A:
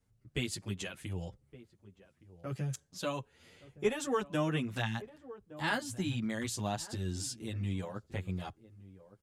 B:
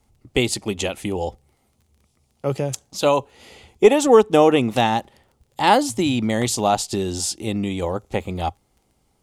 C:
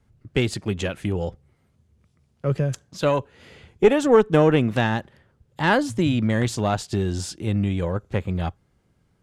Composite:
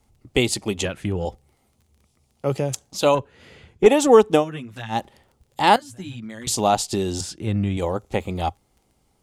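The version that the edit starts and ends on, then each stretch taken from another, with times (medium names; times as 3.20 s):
B
0.85–1.25 s: from C
3.15–3.86 s: from C
4.40–4.93 s: from A, crossfade 0.10 s
5.76–6.47 s: from A
7.21–7.77 s: from C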